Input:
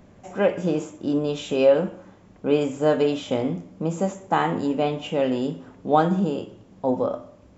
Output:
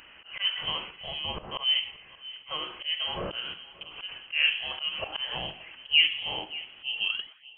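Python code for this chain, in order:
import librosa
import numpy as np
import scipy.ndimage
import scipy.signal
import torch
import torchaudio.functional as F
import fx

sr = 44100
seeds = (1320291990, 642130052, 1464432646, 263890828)

p1 = fx.tape_stop_end(x, sr, length_s=0.65)
p2 = scipy.signal.sosfilt(scipy.signal.butter(4, 690.0, 'highpass', fs=sr, output='sos'), p1)
p3 = fx.env_lowpass_down(p2, sr, base_hz=1200.0, full_db=-25.0)
p4 = fx.high_shelf(p3, sr, hz=2100.0, db=5.5)
p5 = fx.notch(p4, sr, hz=1300.0, q=16.0)
p6 = fx.level_steps(p5, sr, step_db=16)
p7 = p5 + F.gain(torch.from_numpy(p6), -1.0).numpy()
p8 = fx.auto_swell(p7, sr, attack_ms=189.0)
p9 = fx.rider(p8, sr, range_db=4, speed_s=2.0)
p10 = fx.echo_filtered(p9, sr, ms=579, feedback_pct=29, hz=1900.0, wet_db=-16.5)
p11 = fx.freq_invert(p10, sr, carrier_hz=3600)
y = F.gain(torch.from_numpy(p11), 1.5).numpy()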